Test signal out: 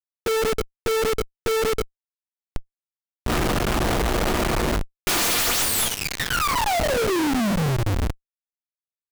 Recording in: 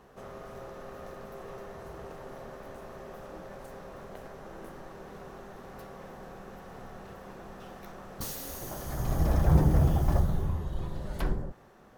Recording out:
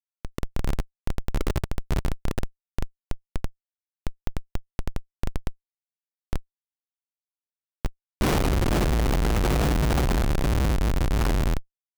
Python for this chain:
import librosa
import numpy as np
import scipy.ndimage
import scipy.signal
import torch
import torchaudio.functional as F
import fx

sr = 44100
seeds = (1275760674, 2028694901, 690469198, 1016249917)

y = fx.tracing_dist(x, sr, depth_ms=0.32)
y = fx.rev_double_slope(y, sr, seeds[0], early_s=0.24, late_s=1.9, knee_db=-19, drr_db=-6.5)
y = fx.schmitt(y, sr, flips_db=-28.0)
y = y * librosa.db_to_amplitude(3.0)